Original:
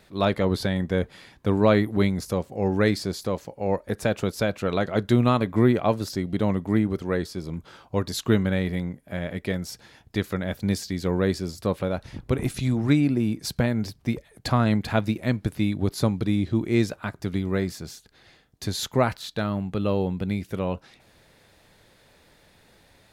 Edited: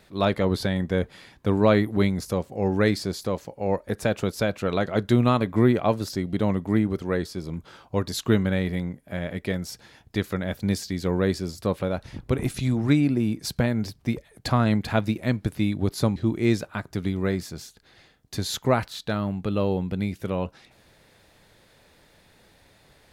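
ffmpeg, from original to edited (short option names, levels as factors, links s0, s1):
-filter_complex "[0:a]asplit=2[s0][s1];[s0]atrim=end=16.162[s2];[s1]atrim=start=16.448[s3];[s2][s3]acrossfade=d=0.004:c1=hsin:c2=hsin"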